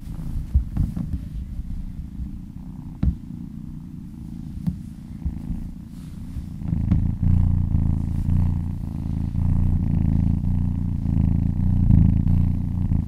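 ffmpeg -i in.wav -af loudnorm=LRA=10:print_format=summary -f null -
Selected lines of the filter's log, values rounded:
Input Integrated:    -22.9 LUFS
Input True Peak:      -1.8 dBTP
Input LRA:            10.7 LU
Input Threshold:     -33.9 LUFS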